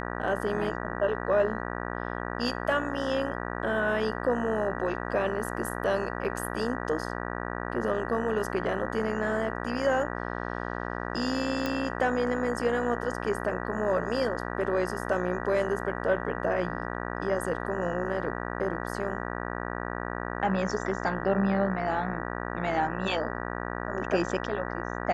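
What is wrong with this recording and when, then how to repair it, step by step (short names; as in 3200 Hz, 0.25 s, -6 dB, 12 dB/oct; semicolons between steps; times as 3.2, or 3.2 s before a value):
buzz 60 Hz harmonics 32 -34 dBFS
11.66 pop -15 dBFS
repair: de-click; de-hum 60 Hz, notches 32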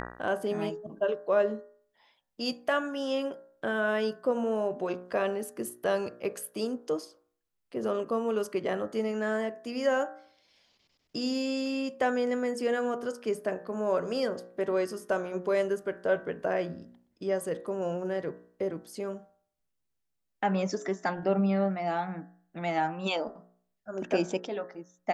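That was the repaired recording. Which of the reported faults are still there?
none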